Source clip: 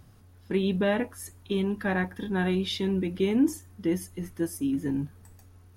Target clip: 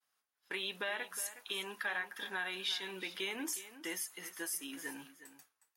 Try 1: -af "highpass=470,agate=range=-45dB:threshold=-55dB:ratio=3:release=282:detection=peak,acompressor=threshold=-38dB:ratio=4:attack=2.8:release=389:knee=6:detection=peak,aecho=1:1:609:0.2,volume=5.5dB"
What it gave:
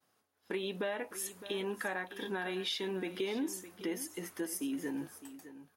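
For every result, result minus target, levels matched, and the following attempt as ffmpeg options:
echo 0.246 s late; 500 Hz band +7.5 dB
-af "highpass=470,agate=range=-45dB:threshold=-55dB:ratio=3:release=282:detection=peak,acompressor=threshold=-38dB:ratio=4:attack=2.8:release=389:knee=6:detection=peak,aecho=1:1:363:0.2,volume=5.5dB"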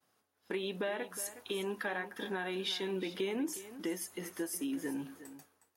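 500 Hz band +8.0 dB
-af "highpass=1.2k,agate=range=-45dB:threshold=-55dB:ratio=3:release=282:detection=peak,acompressor=threshold=-38dB:ratio=4:attack=2.8:release=389:knee=6:detection=peak,aecho=1:1:363:0.2,volume=5.5dB"

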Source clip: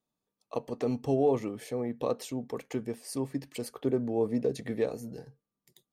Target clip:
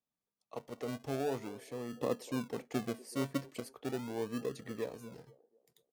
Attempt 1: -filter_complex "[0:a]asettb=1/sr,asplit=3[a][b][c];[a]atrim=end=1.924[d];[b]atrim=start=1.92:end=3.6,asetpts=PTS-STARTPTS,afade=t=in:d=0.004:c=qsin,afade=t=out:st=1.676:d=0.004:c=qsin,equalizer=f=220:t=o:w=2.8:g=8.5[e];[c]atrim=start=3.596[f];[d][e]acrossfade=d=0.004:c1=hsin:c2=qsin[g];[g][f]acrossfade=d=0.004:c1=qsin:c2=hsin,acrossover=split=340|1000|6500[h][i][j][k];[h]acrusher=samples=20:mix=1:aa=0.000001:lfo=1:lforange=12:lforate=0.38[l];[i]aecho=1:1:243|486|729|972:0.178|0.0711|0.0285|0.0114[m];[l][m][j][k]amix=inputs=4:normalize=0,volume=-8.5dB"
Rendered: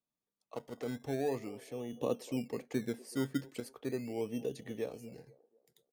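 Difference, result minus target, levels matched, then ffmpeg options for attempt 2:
decimation with a swept rate: distortion -8 dB
-filter_complex "[0:a]asettb=1/sr,asplit=3[a][b][c];[a]atrim=end=1.924[d];[b]atrim=start=1.92:end=3.6,asetpts=PTS-STARTPTS,afade=t=in:d=0.004:c=qsin,afade=t=out:st=1.676:d=0.004:c=qsin,equalizer=f=220:t=o:w=2.8:g=8.5[e];[c]atrim=start=3.596[f];[d][e]acrossfade=d=0.004:c1=hsin:c2=qsin[g];[g][f]acrossfade=d=0.004:c1=qsin:c2=hsin,acrossover=split=340|1000|6500[h][i][j][k];[h]acrusher=samples=41:mix=1:aa=0.000001:lfo=1:lforange=24.6:lforate=0.38[l];[i]aecho=1:1:243|486|729|972:0.178|0.0711|0.0285|0.0114[m];[l][m][j][k]amix=inputs=4:normalize=0,volume=-8.5dB"

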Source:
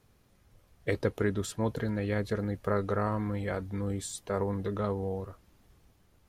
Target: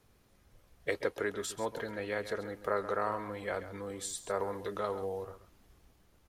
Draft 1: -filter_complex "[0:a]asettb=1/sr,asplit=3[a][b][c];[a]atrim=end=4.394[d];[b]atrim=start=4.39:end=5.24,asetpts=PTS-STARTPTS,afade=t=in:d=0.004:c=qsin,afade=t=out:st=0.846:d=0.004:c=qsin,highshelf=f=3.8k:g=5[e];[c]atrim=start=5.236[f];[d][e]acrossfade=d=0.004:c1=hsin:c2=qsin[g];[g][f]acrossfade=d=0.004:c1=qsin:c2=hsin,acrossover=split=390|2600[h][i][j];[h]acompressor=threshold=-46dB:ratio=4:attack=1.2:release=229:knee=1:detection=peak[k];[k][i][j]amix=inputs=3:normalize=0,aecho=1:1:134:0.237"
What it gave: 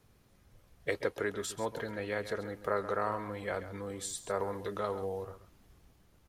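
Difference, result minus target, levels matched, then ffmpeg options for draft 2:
125 Hz band +3.0 dB
-filter_complex "[0:a]asettb=1/sr,asplit=3[a][b][c];[a]atrim=end=4.394[d];[b]atrim=start=4.39:end=5.24,asetpts=PTS-STARTPTS,afade=t=in:d=0.004:c=qsin,afade=t=out:st=0.846:d=0.004:c=qsin,highshelf=f=3.8k:g=5[e];[c]atrim=start=5.236[f];[d][e]acrossfade=d=0.004:c1=hsin:c2=qsin[g];[g][f]acrossfade=d=0.004:c1=qsin:c2=hsin,acrossover=split=390|2600[h][i][j];[h]acompressor=threshold=-46dB:ratio=4:attack=1.2:release=229:knee=1:detection=peak,equalizer=f=130:w=0.86:g=-4[k];[k][i][j]amix=inputs=3:normalize=0,aecho=1:1:134:0.237"

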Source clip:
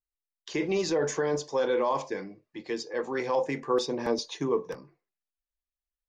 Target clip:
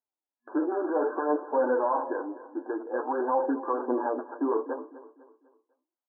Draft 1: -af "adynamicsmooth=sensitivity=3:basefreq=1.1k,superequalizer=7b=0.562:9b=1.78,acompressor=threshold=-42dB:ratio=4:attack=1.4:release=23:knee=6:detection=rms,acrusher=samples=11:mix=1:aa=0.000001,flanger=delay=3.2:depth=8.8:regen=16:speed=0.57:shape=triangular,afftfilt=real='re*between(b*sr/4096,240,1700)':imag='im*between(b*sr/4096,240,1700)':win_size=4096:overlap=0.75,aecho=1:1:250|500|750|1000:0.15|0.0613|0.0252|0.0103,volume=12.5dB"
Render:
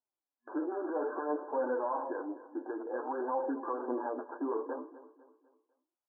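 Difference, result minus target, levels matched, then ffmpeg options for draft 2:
compressor: peak gain reduction +7.5 dB
-af "adynamicsmooth=sensitivity=3:basefreq=1.1k,superequalizer=7b=0.562:9b=1.78,acompressor=threshold=-32dB:ratio=4:attack=1.4:release=23:knee=6:detection=rms,acrusher=samples=11:mix=1:aa=0.000001,flanger=delay=3.2:depth=8.8:regen=16:speed=0.57:shape=triangular,afftfilt=real='re*between(b*sr/4096,240,1700)':imag='im*between(b*sr/4096,240,1700)':win_size=4096:overlap=0.75,aecho=1:1:250|500|750|1000:0.15|0.0613|0.0252|0.0103,volume=12.5dB"

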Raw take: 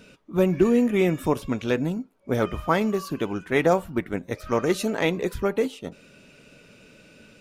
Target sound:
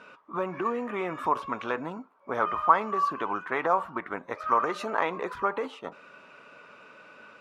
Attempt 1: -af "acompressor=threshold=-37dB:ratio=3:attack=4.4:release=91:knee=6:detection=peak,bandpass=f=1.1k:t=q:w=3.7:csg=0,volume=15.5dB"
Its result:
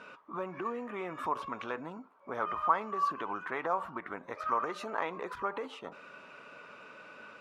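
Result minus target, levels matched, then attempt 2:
compressor: peak gain reduction +7.5 dB
-af "acompressor=threshold=-26dB:ratio=3:attack=4.4:release=91:knee=6:detection=peak,bandpass=f=1.1k:t=q:w=3.7:csg=0,volume=15.5dB"

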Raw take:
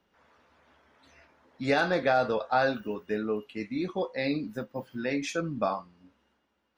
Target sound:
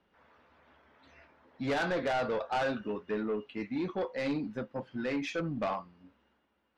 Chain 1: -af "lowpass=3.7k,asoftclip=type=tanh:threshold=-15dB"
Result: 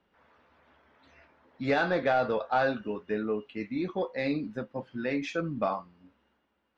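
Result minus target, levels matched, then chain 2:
soft clip: distortion -13 dB
-af "lowpass=3.7k,asoftclip=type=tanh:threshold=-26.5dB"

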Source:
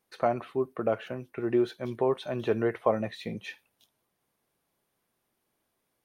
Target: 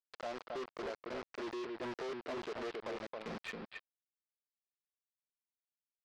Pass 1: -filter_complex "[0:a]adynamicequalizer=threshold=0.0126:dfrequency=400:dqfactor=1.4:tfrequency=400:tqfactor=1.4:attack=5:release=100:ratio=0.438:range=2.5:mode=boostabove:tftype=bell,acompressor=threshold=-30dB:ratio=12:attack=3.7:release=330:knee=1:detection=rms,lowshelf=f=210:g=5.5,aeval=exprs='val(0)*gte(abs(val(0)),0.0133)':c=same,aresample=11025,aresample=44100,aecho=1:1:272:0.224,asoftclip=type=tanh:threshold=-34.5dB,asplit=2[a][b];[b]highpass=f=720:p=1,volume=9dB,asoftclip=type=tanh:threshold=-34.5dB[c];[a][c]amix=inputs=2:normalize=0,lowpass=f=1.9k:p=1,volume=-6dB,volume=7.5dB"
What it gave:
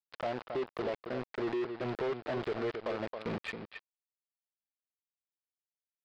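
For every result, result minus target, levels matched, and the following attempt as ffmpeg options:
125 Hz band +6.0 dB; soft clip: distortion -6 dB
-filter_complex "[0:a]adynamicequalizer=threshold=0.0126:dfrequency=400:dqfactor=1.4:tfrequency=400:tqfactor=1.4:attack=5:release=100:ratio=0.438:range=2.5:mode=boostabove:tftype=bell,highpass=f=150:w=0.5412,highpass=f=150:w=1.3066,acompressor=threshold=-30dB:ratio=12:attack=3.7:release=330:knee=1:detection=rms,lowshelf=f=210:g=5.5,aeval=exprs='val(0)*gte(abs(val(0)),0.0133)':c=same,aresample=11025,aresample=44100,aecho=1:1:272:0.224,asoftclip=type=tanh:threshold=-34.5dB,asplit=2[a][b];[b]highpass=f=720:p=1,volume=9dB,asoftclip=type=tanh:threshold=-34.5dB[c];[a][c]amix=inputs=2:normalize=0,lowpass=f=1.9k:p=1,volume=-6dB,volume=7.5dB"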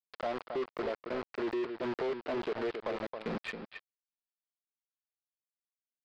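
soft clip: distortion -7 dB
-filter_complex "[0:a]adynamicequalizer=threshold=0.0126:dfrequency=400:dqfactor=1.4:tfrequency=400:tqfactor=1.4:attack=5:release=100:ratio=0.438:range=2.5:mode=boostabove:tftype=bell,highpass=f=150:w=0.5412,highpass=f=150:w=1.3066,acompressor=threshold=-30dB:ratio=12:attack=3.7:release=330:knee=1:detection=rms,lowshelf=f=210:g=5.5,aeval=exprs='val(0)*gte(abs(val(0)),0.0133)':c=same,aresample=11025,aresample=44100,aecho=1:1:272:0.224,asoftclip=type=tanh:threshold=-45.5dB,asplit=2[a][b];[b]highpass=f=720:p=1,volume=9dB,asoftclip=type=tanh:threshold=-34.5dB[c];[a][c]amix=inputs=2:normalize=0,lowpass=f=1.9k:p=1,volume=-6dB,volume=7.5dB"

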